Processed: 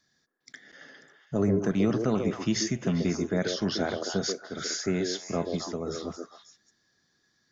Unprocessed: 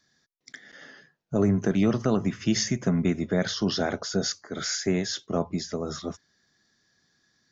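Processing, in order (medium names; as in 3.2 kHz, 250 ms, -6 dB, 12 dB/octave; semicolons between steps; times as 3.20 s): repeats whose band climbs or falls 135 ms, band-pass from 410 Hz, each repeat 1.4 oct, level -1 dB; trim -3 dB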